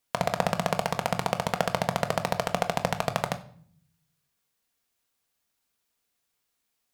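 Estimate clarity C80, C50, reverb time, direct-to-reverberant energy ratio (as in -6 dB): 19.0 dB, 16.0 dB, 0.55 s, 7.0 dB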